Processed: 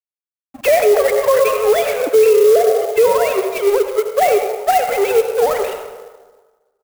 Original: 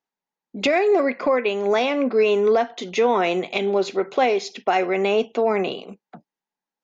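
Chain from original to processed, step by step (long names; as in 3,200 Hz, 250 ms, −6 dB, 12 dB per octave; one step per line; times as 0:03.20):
three sine waves on the formant tracks
0:00.68–0:01.53: high-pass filter 450 Hz 24 dB per octave
dead-zone distortion −35.5 dBFS
echo with shifted repeats 95 ms, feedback 53%, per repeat +48 Hz, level −17 dB
convolution reverb RT60 1.4 s, pre-delay 63 ms, DRR 7 dB
boost into a limiter +15 dB
converter with an unsteady clock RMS 0.035 ms
level −4 dB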